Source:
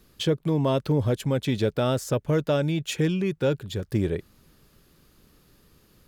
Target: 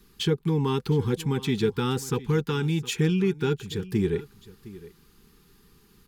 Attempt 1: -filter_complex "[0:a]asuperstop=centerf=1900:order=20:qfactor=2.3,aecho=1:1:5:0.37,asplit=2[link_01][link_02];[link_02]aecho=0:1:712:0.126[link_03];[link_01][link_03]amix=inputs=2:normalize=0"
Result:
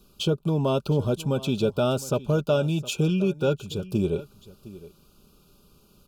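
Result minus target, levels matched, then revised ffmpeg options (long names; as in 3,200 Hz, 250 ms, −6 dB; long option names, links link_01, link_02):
2,000 Hz band −3.5 dB
-filter_complex "[0:a]asuperstop=centerf=620:order=20:qfactor=2.3,aecho=1:1:5:0.37,asplit=2[link_01][link_02];[link_02]aecho=0:1:712:0.126[link_03];[link_01][link_03]amix=inputs=2:normalize=0"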